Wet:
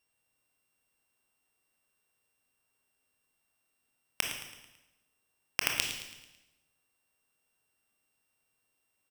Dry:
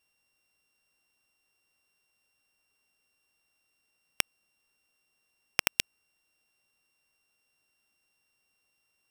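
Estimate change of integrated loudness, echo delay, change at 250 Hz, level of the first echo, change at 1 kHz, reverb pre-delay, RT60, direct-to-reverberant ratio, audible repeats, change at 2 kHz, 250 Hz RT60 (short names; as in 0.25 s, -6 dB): -2.5 dB, 0.11 s, -1.0 dB, -11.5 dB, -1.0 dB, 21 ms, 1.0 s, 1.5 dB, 4, -1.0 dB, 1.1 s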